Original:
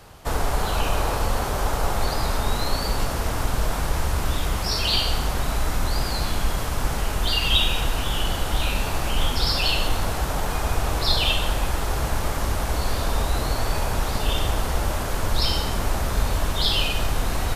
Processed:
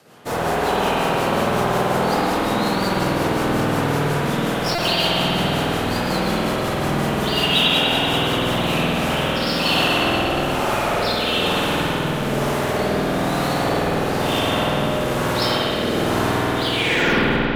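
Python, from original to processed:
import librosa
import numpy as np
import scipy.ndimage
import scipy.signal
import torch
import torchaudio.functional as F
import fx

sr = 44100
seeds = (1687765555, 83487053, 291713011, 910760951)

p1 = fx.tape_stop_end(x, sr, length_s=0.96)
p2 = scipy.signal.sosfilt(scipy.signal.butter(4, 150.0, 'highpass', fs=sr, output='sos'), p1)
p3 = fx.schmitt(p2, sr, flips_db=-27.0)
p4 = p2 + F.gain(torch.from_numpy(p3), -4.0).numpy()
p5 = fx.rotary_switch(p4, sr, hz=5.5, then_hz=1.1, switch_at_s=8.35)
p6 = fx.rev_spring(p5, sr, rt60_s=3.1, pass_ms=(49,), chirp_ms=70, drr_db=-7.0)
y = fx.buffer_glitch(p6, sr, at_s=(4.75,), block=128, repeats=10)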